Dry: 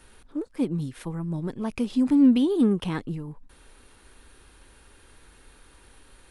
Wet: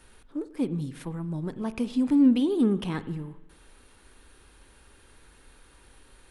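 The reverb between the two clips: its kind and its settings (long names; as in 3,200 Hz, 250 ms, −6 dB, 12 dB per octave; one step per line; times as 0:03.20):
spring reverb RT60 1.1 s, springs 45 ms, chirp 50 ms, DRR 14 dB
level −2 dB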